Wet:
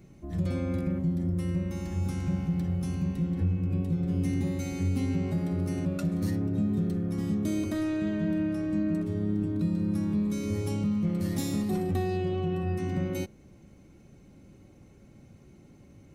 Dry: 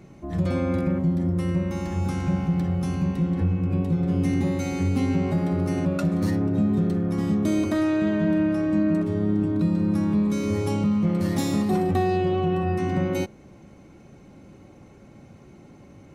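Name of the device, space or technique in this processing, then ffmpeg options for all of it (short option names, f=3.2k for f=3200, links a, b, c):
smiley-face EQ: -af "lowshelf=f=87:g=7,equalizer=f=940:t=o:w=1.5:g=-5.5,highshelf=f=8.7k:g=8,volume=-6.5dB"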